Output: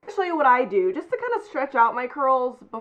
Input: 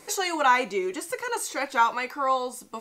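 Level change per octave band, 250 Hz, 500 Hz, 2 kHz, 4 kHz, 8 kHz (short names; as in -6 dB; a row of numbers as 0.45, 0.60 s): +6.0 dB, +7.0 dB, 0.0 dB, under -10 dB, under -20 dB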